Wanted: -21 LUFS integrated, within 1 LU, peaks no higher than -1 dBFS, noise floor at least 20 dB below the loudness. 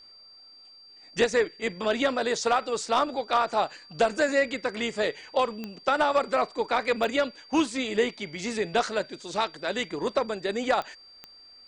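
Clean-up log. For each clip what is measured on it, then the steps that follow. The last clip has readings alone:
clicks found 4; steady tone 4.7 kHz; tone level -49 dBFS; loudness -27.0 LUFS; peak level -11.0 dBFS; loudness target -21.0 LUFS
-> de-click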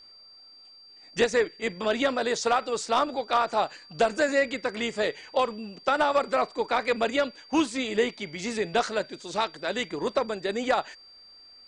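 clicks found 0; steady tone 4.7 kHz; tone level -49 dBFS
-> band-stop 4.7 kHz, Q 30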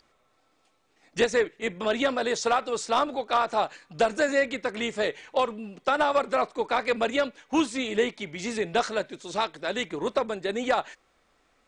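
steady tone not found; loudness -27.0 LUFS; peak level -11.0 dBFS; loudness target -21.0 LUFS
-> trim +6 dB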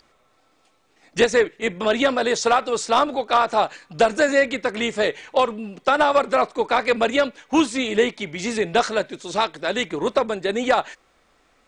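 loudness -21.0 LUFS; peak level -5.0 dBFS; noise floor -62 dBFS

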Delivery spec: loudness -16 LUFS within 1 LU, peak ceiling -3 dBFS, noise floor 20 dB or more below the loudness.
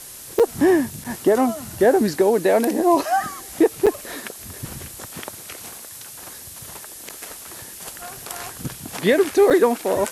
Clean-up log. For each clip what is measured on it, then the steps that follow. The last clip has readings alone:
dropouts 5; longest dropout 6.8 ms; noise floor -39 dBFS; noise floor target -40 dBFS; loudness -19.5 LUFS; peak level -6.5 dBFS; loudness target -16.0 LUFS
-> interpolate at 0.39/1.04/3.86/7.09/9.50 s, 6.8 ms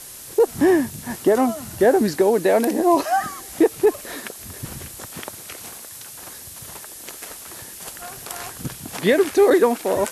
dropouts 0; noise floor -39 dBFS; noise floor target -40 dBFS
-> noise print and reduce 6 dB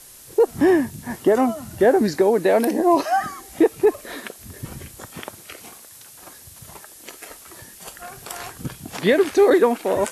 noise floor -45 dBFS; loudness -19.0 LUFS; peak level -6.5 dBFS; loudness target -16.0 LUFS
-> trim +3 dB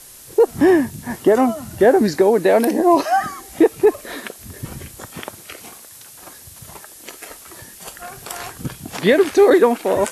loudness -16.0 LUFS; peak level -3.5 dBFS; noise floor -42 dBFS

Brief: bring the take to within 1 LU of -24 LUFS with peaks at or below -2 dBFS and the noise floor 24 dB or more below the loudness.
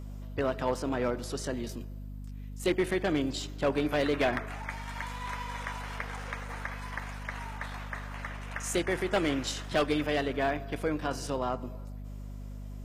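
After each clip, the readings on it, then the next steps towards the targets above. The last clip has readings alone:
clipped samples 0.4%; clipping level -19.5 dBFS; hum 50 Hz; highest harmonic 250 Hz; hum level -38 dBFS; loudness -32.5 LUFS; peak level -19.5 dBFS; loudness target -24.0 LUFS
-> clip repair -19.5 dBFS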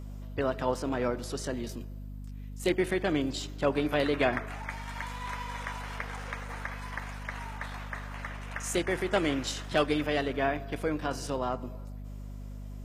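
clipped samples 0.0%; hum 50 Hz; highest harmonic 250 Hz; hum level -38 dBFS
-> de-hum 50 Hz, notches 5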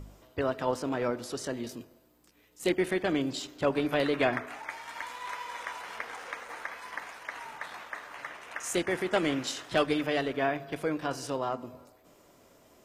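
hum not found; loudness -32.5 LUFS; peak level -12.0 dBFS; loudness target -24.0 LUFS
-> trim +8.5 dB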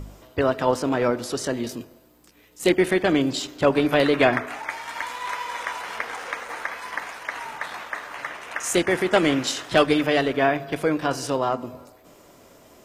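loudness -24.0 LUFS; peak level -3.5 dBFS; noise floor -53 dBFS

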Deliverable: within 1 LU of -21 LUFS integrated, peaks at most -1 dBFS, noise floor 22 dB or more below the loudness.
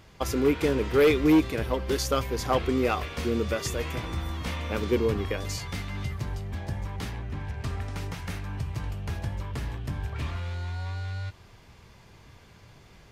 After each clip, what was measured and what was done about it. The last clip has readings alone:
clipped samples 0.5%; clipping level -15.0 dBFS; loudness -29.0 LUFS; peak level -15.0 dBFS; loudness target -21.0 LUFS
-> clip repair -15 dBFS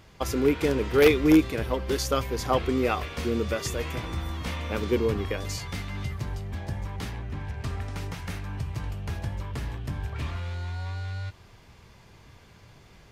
clipped samples 0.0%; loudness -28.5 LUFS; peak level -6.0 dBFS; loudness target -21.0 LUFS
-> trim +7.5 dB; peak limiter -1 dBFS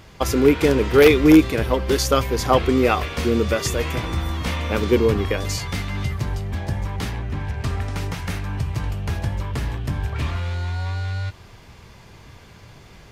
loudness -21.0 LUFS; peak level -1.0 dBFS; noise floor -46 dBFS

